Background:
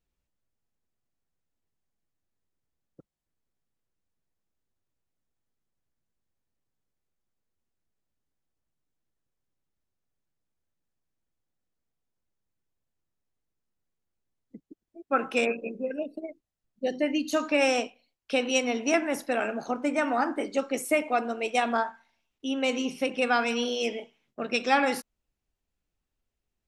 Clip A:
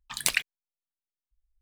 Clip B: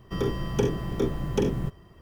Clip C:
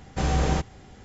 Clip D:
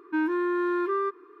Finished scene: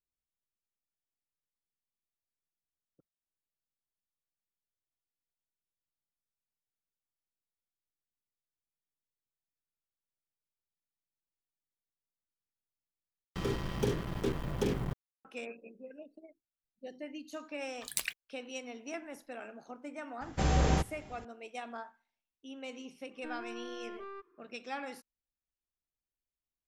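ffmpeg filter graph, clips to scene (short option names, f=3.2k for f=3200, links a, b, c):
-filter_complex "[0:a]volume=-17dB[a];[2:a]acrusher=bits=4:mix=0:aa=0.5[b];[1:a]highshelf=f=7.4k:g=7.5[c];[4:a]aeval=exprs='(tanh(15.8*val(0)+0.6)-tanh(0.6))/15.8':c=same[d];[a]asplit=2[e][f];[e]atrim=end=13.244[g];[b]atrim=end=2.01,asetpts=PTS-STARTPTS,volume=-7dB[h];[f]atrim=start=15.246[i];[c]atrim=end=1.61,asetpts=PTS-STARTPTS,volume=-12dB,afade=t=in:d=0.004:c=hsin,afade=t=out:st=1.606:d=0.004:c=hsin,adelay=17710[j];[3:a]atrim=end=1.04,asetpts=PTS-STARTPTS,volume=-4dB,afade=t=in:d=0.004:c=hsin,afade=t=out:st=1.036:d=0.004:c=hsin,adelay=20210[k];[d]atrim=end=1.4,asetpts=PTS-STARTPTS,volume=-15dB,afade=t=in:d=0.004:c=hsin,afade=t=out:st=1.396:d=0.004:c=hsin,adelay=23110[l];[g][h]acrossfade=d=0.004:c1=hsin:c2=hsin[m];[m][i]acrossfade=d=0.004:c1=hsin:c2=hsin[n];[n][j][k][l]amix=inputs=4:normalize=0"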